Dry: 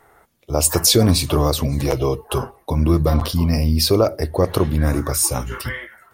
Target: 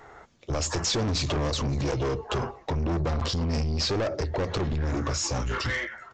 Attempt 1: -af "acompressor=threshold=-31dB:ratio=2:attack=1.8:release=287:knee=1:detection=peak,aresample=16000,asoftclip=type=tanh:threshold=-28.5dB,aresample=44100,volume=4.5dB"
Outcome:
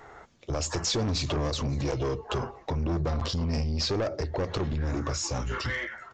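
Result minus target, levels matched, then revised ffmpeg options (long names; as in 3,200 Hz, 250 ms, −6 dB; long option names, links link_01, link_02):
downward compressor: peak gain reduction +4.5 dB
-af "acompressor=threshold=-22dB:ratio=2:attack=1.8:release=287:knee=1:detection=peak,aresample=16000,asoftclip=type=tanh:threshold=-28.5dB,aresample=44100,volume=4.5dB"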